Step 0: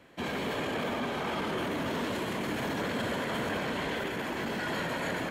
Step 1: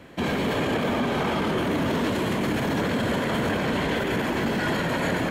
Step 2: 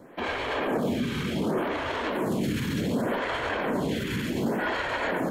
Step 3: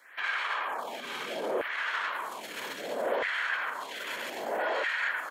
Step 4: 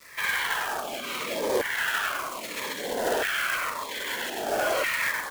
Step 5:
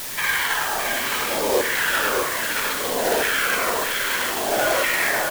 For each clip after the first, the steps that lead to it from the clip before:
low-shelf EQ 330 Hz +6.5 dB; brickwall limiter −24.5 dBFS, peak gain reduction 5 dB; level +8 dB
phaser with staggered stages 0.67 Hz
brickwall limiter −26 dBFS, peak gain reduction 9 dB; auto-filter high-pass saw down 0.62 Hz 490–1,900 Hz; single-tap delay 1,103 ms −16.5 dB; level +1.5 dB
log-companded quantiser 4 bits; phaser whose notches keep moving one way falling 0.81 Hz; level +6.5 dB
bit-depth reduction 6 bits, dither triangular; single-tap delay 616 ms −5 dB; on a send at −10.5 dB: convolution reverb RT60 0.65 s, pre-delay 14 ms; on the sum: level +4.5 dB

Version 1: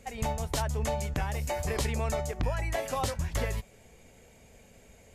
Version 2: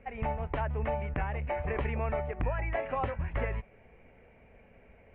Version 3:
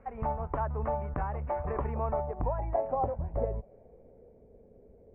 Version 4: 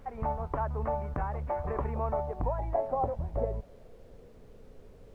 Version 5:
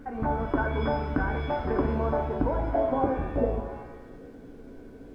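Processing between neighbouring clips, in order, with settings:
Butterworth low-pass 2,600 Hz 48 dB per octave; parametric band 140 Hz −3 dB 2.3 octaves
dynamic equaliser 1,900 Hz, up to −6 dB, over −51 dBFS, Q 1; low-pass filter sweep 1,200 Hz → 440 Hz, 0:01.71–0:04.49; level −1 dB
background noise brown −52 dBFS
hollow resonant body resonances 280/1,500 Hz, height 17 dB, ringing for 35 ms; reverb with rising layers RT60 1 s, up +7 semitones, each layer −8 dB, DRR 4 dB

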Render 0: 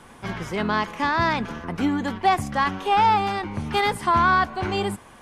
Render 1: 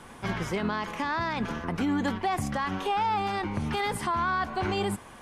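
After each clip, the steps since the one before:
brickwall limiter −19.5 dBFS, peak gain reduction 12 dB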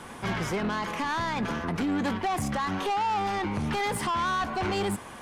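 low-shelf EQ 63 Hz −7.5 dB
soft clipping −29 dBFS, distortion −11 dB
level +5 dB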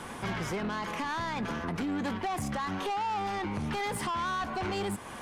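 downward compressor 2 to 1, threshold −37 dBFS, peak gain reduction 6 dB
level +1.5 dB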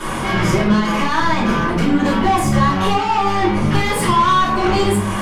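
brickwall limiter −31 dBFS, peak gain reduction 5.5 dB
convolution reverb RT60 0.55 s, pre-delay 3 ms, DRR −11.5 dB
level +6.5 dB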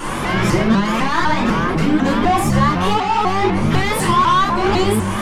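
pitch modulation by a square or saw wave saw up 4 Hz, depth 160 cents

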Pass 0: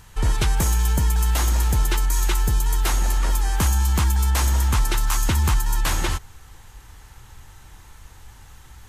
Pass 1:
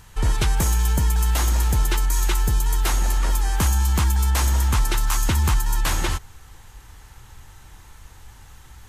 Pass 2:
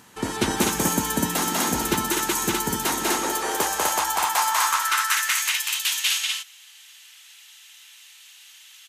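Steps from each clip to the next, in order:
no processing that can be heard
loudspeakers that aren't time-aligned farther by 67 metres −1 dB, 86 metres −2 dB; high-pass filter sweep 250 Hz → 2,900 Hz, 0:02.96–0:05.79

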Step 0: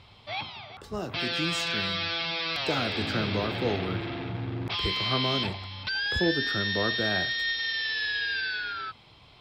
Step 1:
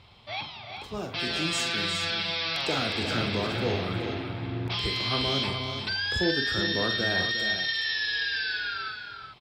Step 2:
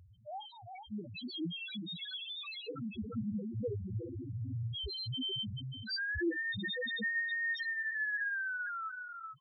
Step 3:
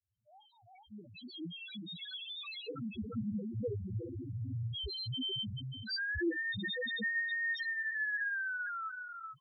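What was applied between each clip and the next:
dynamic equaliser 8,200 Hz, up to +8 dB, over −53 dBFS, Q 1.1; on a send: multi-tap delay 44/358/419 ms −9/−9.5/−8.5 dB; on the sum: level −1.5 dB
parametric band 220 Hz +4 dB 0.24 octaves; in parallel at +0.5 dB: downward compressor, threshold −37 dBFS, peak gain reduction 15.5 dB; on the sum: spectral peaks only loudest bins 1; level −1 dB
fade in at the beginning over 2.62 s

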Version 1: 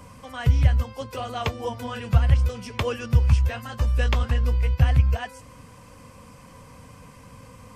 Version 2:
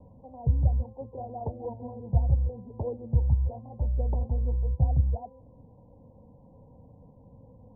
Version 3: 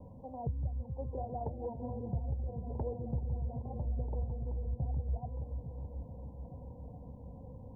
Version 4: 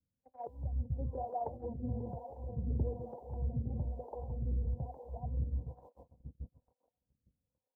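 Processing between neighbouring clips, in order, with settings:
Butterworth low-pass 910 Hz 96 dB per octave; level −5.5 dB
downward compressor 3 to 1, threshold −39 dBFS, peak gain reduction 16 dB; echo whose low-pass opens from repeat to repeat 429 ms, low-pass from 200 Hz, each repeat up 1 octave, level −6 dB; level +1.5 dB
feedback echo with a long and a short gap by turns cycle 899 ms, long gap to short 1.5 to 1, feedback 37%, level −15 dB; noise gate −41 dBFS, range −41 dB; two-band tremolo in antiphase 1.1 Hz, depth 100%, crossover 410 Hz; level +5 dB

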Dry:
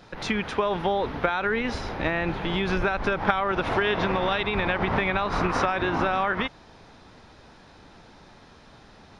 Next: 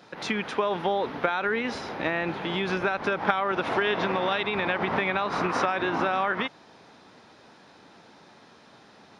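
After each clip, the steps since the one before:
high-pass filter 180 Hz 12 dB per octave
level −1 dB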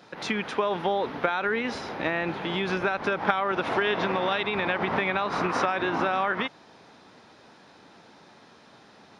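no processing that can be heard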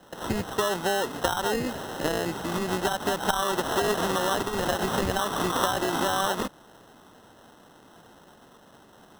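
decimation without filtering 19×

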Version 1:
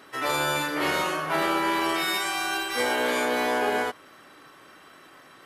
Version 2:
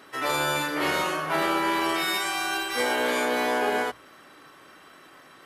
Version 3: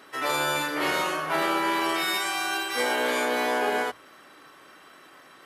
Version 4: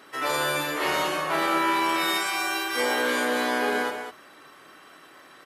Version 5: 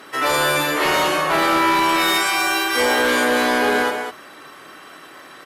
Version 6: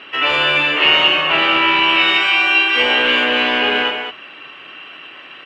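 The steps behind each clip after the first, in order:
mains-hum notches 60/120 Hz
low-shelf EQ 150 Hz −7.5 dB
loudspeakers that aren't time-aligned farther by 18 metres −9 dB, 67 metres −8 dB
sine wavefolder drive 5 dB, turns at −12 dBFS
low-pass with resonance 2,800 Hz, resonance Q 11; level −2 dB

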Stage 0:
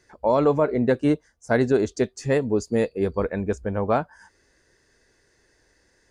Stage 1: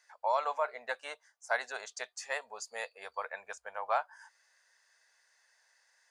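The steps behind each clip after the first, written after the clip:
inverse Chebyshev high-pass filter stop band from 360 Hz, stop band 40 dB
level −4 dB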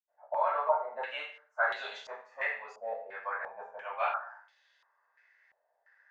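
convolution reverb RT60 0.50 s, pre-delay 77 ms
low-pass on a step sequencer 2.9 Hz 680–3,400 Hz
level −5 dB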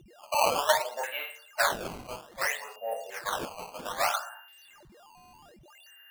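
steady tone 2,800 Hz −56 dBFS
sample-and-hold swept by an LFO 14×, swing 160% 0.62 Hz
level +3.5 dB

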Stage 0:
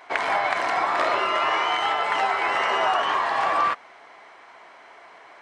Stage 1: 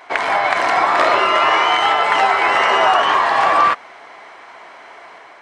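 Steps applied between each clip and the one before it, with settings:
automatic gain control gain up to 3 dB
level +5.5 dB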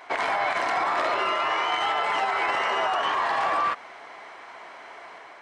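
brickwall limiter −12.5 dBFS, peak gain reduction 10.5 dB
level −4 dB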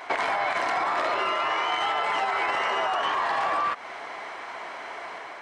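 downward compressor 3 to 1, threshold −31 dBFS, peak gain reduction 7.5 dB
level +6 dB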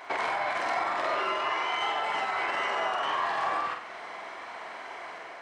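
flutter between parallel walls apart 8 metres, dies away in 0.53 s
level −5 dB

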